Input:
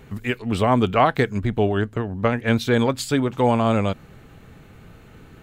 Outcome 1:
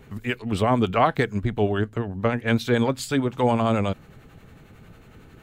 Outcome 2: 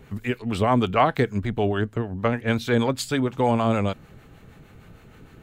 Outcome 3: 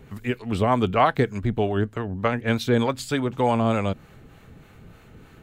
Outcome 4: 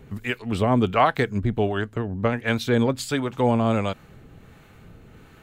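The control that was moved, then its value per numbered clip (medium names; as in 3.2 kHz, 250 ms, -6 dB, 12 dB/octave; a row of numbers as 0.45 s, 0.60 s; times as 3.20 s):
harmonic tremolo, rate: 11 Hz, 6.5 Hz, 3.3 Hz, 1.4 Hz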